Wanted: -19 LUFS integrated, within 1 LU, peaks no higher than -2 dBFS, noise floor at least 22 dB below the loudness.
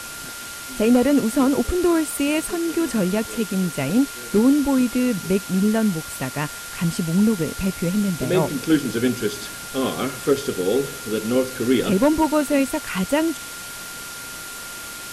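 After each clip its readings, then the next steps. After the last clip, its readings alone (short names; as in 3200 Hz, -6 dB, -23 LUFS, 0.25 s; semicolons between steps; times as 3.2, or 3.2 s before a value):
steady tone 1400 Hz; tone level -37 dBFS; noise floor -34 dBFS; noise floor target -44 dBFS; loudness -21.5 LUFS; peak -6.5 dBFS; loudness target -19.0 LUFS
-> notch 1400 Hz, Q 30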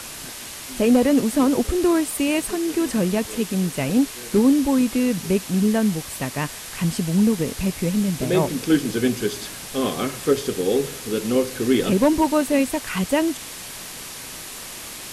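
steady tone none; noise floor -36 dBFS; noise floor target -44 dBFS
-> denoiser 8 dB, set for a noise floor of -36 dBFS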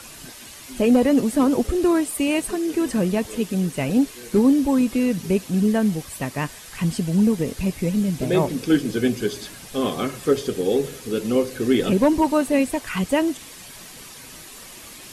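noise floor -41 dBFS; noise floor target -44 dBFS
-> denoiser 6 dB, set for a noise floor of -41 dBFS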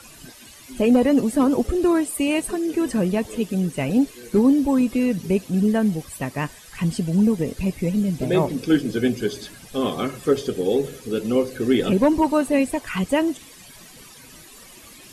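noise floor -45 dBFS; loudness -21.5 LUFS; peak -7.0 dBFS; loudness target -19.0 LUFS
-> gain +2.5 dB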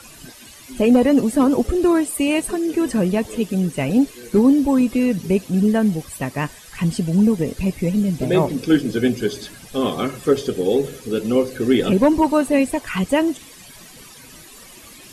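loudness -19.0 LUFS; peak -4.5 dBFS; noise floor -43 dBFS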